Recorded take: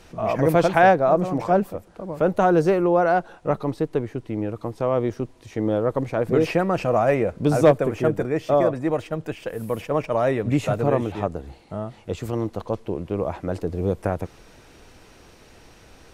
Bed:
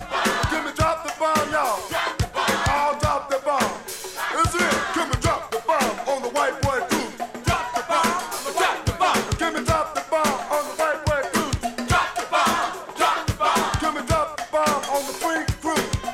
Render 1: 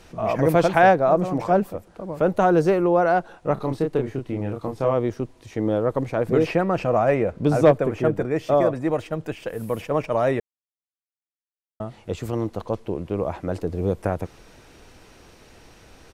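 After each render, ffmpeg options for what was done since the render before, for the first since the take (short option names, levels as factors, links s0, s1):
-filter_complex "[0:a]asplit=3[s0][s1][s2];[s0]afade=t=out:st=3.56:d=0.02[s3];[s1]asplit=2[s4][s5];[s5]adelay=30,volume=0.631[s6];[s4][s6]amix=inputs=2:normalize=0,afade=t=in:st=3.56:d=0.02,afade=t=out:st=4.92:d=0.02[s7];[s2]afade=t=in:st=4.92:d=0.02[s8];[s3][s7][s8]amix=inputs=3:normalize=0,asettb=1/sr,asplit=3[s9][s10][s11];[s9]atrim=end=6.434[s12];[s10]atrim=start=6.43:end=8.31,asetpts=PTS-STARTPTS,afade=t=in:d=0.004:c=qsin,afade=t=out:st=1.876:d=0.004:c=qsin,highshelf=f=5600:g=-7.5[s13];[s11]atrim=start=8.306[s14];[s12][s13]acrossfade=d=0.004:c1=hsin:c2=qsin[s15];[s15][s14]acrossfade=d=0.004:c1=qsin:c2=hsin,asplit=3[s16][s17][s18];[s16]atrim=end=10.4,asetpts=PTS-STARTPTS,afade=t=out:st=10.396:d=0.004:c=hsin[s19];[s17]atrim=start=10.4:end=11.8,asetpts=PTS-STARTPTS,volume=0[s20];[s18]atrim=start=11.8,asetpts=PTS-STARTPTS,afade=t=in:d=0.004:c=hsin[s21];[s19][s20][s21]concat=n=3:v=0:a=1"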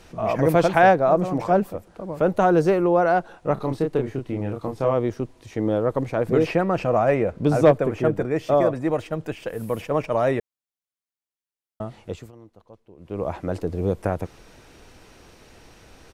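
-filter_complex "[0:a]asplit=3[s0][s1][s2];[s0]atrim=end=12.32,asetpts=PTS-STARTPTS,afade=t=out:st=12:d=0.32:silence=0.0841395[s3];[s1]atrim=start=12.32:end=12.97,asetpts=PTS-STARTPTS,volume=0.0841[s4];[s2]atrim=start=12.97,asetpts=PTS-STARTPTS,afade=t=in:d=0.32:silence=0.0841395[s5];[s3][s4][s5]concat=n=3:v=0:a=1"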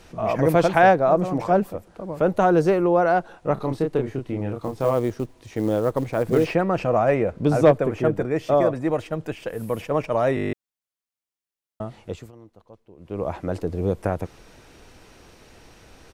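-filter_complex "[0:a]asettb=1/sr,asplit=3[s0][s1][s2];[s0]atrim=end=4.604[s3];[s1]atrim=start=4.6:end=6.54,asetpts=PTS-STARTPTS,afade=t=in:d=0.004:c=qsin,afade=t=out:st=1.936:d=0.004:c=qsin,acrusher=bits=7:mode=log:mix=0:aa=0.000001[s4];[s2]atrim=start=6.536[s5];[s3][s4]acrossfade=d=0.004:c1=hsin:c2=qsin[s6];[s6][s5]acrossfade=d=0.004:c1=qsin:c2=hsin,asplit=10[s7][s8][s9][s10][s11][s12][s13][s14][s15][s16];[s7]atrim=end=10.372[s17];[s8]atrim=start=10.348:end=10.372[s18];[s9]atrim=start=10.348:end=10.372[s19];[s10]atrim=start=10.348:end=10.372[s20];[s11]atrim=start=10.348:end=10.372[s21];[s12]atrim=start=10.348:end=10.372[s22];[s13]atrim=start=10.348:end=10.372[s23];[s14]atrim=start=10.348:end=10.372[s24];[s15]atrim=start=10.348:end=10.372[s25];[s16]atrim=start=10.528[s26];[s17][s18]acrossfade=d=0.004:c1=hsin:c2=hsin[s27];[s27][s19]acrossfade=d=0.004:c1=hsin:c2=hsin[s28];[s28][s20]acrossfade=d=0.004:c1=hsin:c2=hsin[s29];[s29][s21]acrossfade=d=0.004:c1=hsin:c2=hsin[s30];[s30][s22]acrossfade=d=0.004:c1=hsin:c2=hsin[s31];[s31][s23]acrossfade=d=0.004:c1=hsin:c2=hsin[s32];[s32][s24]acrossfade=d=0.004:c1=hsin:c2=hsin[s33];[s33][s25]acrossfade=d=0.004:c1=hsin:c2=hsin[s34];[s34][s26]acrossfade=d=0.004:c1=hsin:c2=hsin"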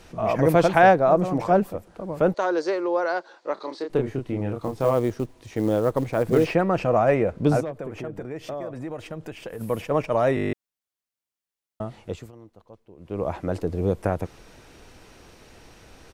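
-filter_complex "[0:a]asettb=1/sr,asplit=3[s0][s1][s2];[s0]atrim=end=2.344[s3];[s1]atrim=start=2.34:end=3.9,asetpts=PTS-STARTPTS,afade=t=in:d=0.004:c=qsin,afade=t=out:st=1.556:d=0.004:c=qsin,highpass=f=370:w=0.5412,highpass=f=370:w=1.3066,equalizer=f=440:t=q:w=4:g=-7,equalizer=f=720:t=q:w=4:g=-9,equalizer=f=1300:t=q:w=4:g=-4,equalizer=f=2700:t=q:w=4:g=-6,equalizer=f=4500:t=q:w=4:g=9,lowpass=f=7000:w=0.5412,lowpass=f=7000:w=1.3066[s4];[s2]atrim=start=3.896[s5];[s3][s4]acrossfade=d=0.004:c1=hsin:c2=qsin[s6];[s6][s5]acrossfade=d=0.004:c1=qsin:c2=hsin,asettb=1/sr,asplit=3[s7][s8][s9];[s7]atrim=end=7.604[s10];[s8]atrim=start=7.6:end=9.61,asetpts=PTS-STARTPTS,afade=t=in:d=0.004:c=qsin,afade=t=out:st=2.006:d=0.004:c=qsin,acompressor=threshold=0.0282:ratio=4:attack=3.2:release=140:knee=1:detection=peak[s11];[s9]atrim=start=9.606[s12];[s10][s11]acrossfade=d=0.004:c1=hsin:c2=qsin[s13];[s13][s12]acrossfade=d=0.004:c1=qsin:c2=hsin"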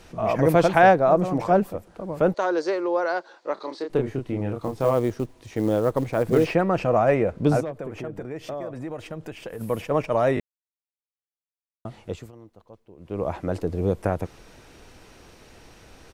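-filter_complex "[0:a]asplit=3[s0][s1][s2];[s0]atrim=end=10.4,asetpts=PTS-STARTPTS,afade=t=out:st=10.396:d=0.004:c=hsin[s3];[s1]atrim=start=10.4:end=11.85,asetpts=PTS-STARTPTS,volume=0[s4];[s2]atrim=start=11.85,asetpts=PTS-STARTPTS,afade=t=in:d=0.004:c=hsin[s5];[s3][s4][s5]concat=n=3:v=0:a=1"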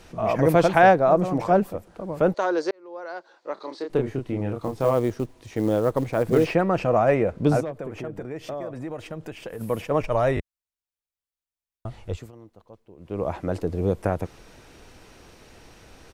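-filter_complex "[0:a]asplit=3[s0][s1][s2];[s0]afade=t=out:st=10:d=0.02[s3];[s1]asubboost=boost=5.5:cutoff=82,afade=t=in:st=10:d=0.02,afade=t=out:st=12.16:d=0.02[s4];[s2]afade=t=in:st=12.16:d=0.02[s5];[s3][s4][s5]amix=inputs=3:normalize=0,asplit=2[s6][s7];[s6]atrim=end=2.71,asetpts=PTS-STARTPTS,afade=t=out:st=2.706:d=0.004:c=hsin[s8];[s7]atrim=start=2.71,asetpts=PTS-STARTPTS,afade=t=in:d=1.24[s9];[s8][s9]concat=n=2:v=0:a=1"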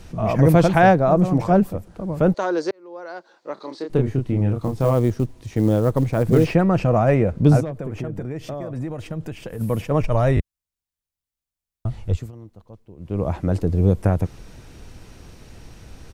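-af "bass=f=250:g=11,treble=f=4000:g=3"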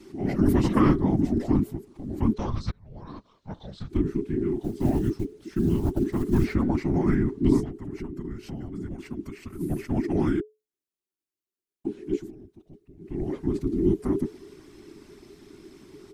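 -af "afftfilt=real='hypot(re,im)*cos(2*PI*random(0))':imag='hypot(re,im)*sin(2*PI*random(1))':win_size=512:overlap=0.75,afreqshift=-430"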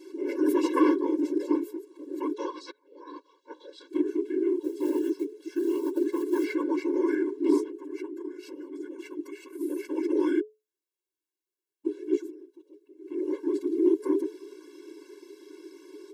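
-filter_complex "[0:a]asplit=2[s0][s1];[s1]volume=7.08,asoftclip=hard,volume=0.141,volume=0.335[s2];[s0][s2]amix=inputs=2:normalize=0,afftfilt=real='re*eq(mod(floor(b*sr/1024/290),2),1)':imag='im*eq(mod(floor(b*sr/1024/290),2),1)':win_size=1024:overlap=0.75"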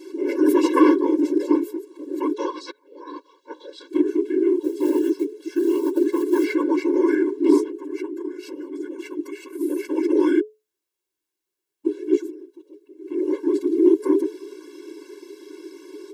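-af "volume=2.24"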